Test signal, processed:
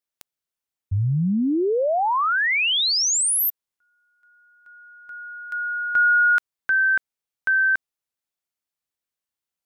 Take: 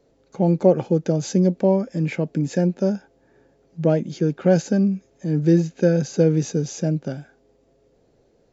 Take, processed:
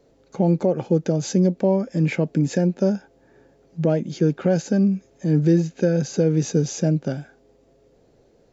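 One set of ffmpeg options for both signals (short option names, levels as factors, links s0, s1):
-af "alimiter=limit=0.251:level=0:latency=1:release=339,volume=1.41"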